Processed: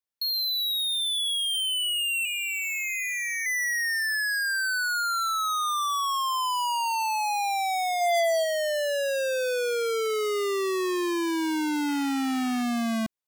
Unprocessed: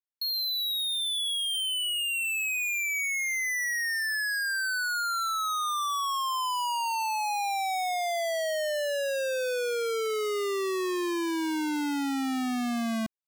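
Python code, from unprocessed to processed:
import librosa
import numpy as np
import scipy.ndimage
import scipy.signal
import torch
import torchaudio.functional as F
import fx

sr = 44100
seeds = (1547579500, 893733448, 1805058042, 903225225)

y = fx.ring_mod(x, sr, carrier_hz=210.0, at=(2.25, 3.46))
y = fx.comb(y, sr, ms=4.4, depth=0.66, at=(8.0, 8.43), fade=0.02)
y = fx.spec_paint(y, sr, seeds[0], shape='noise', start_s=11.88, length_s=0.75, low_hz=820.0, high_hz=3200.0, level_db=-52.0)
y = y * librosa.db_to_amplitude(2.5)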